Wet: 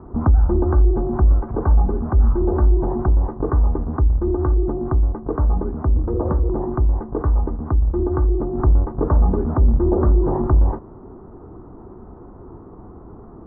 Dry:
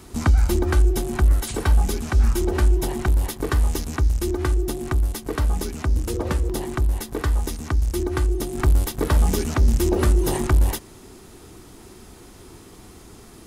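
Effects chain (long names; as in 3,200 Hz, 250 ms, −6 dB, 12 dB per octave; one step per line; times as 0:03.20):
in parallel at −1 dB: brickwall limiter −19 dBFS, peak gain reduction 10 dB
on the sum: Butterworth low-pass 1,200 Hz 36 dB per octave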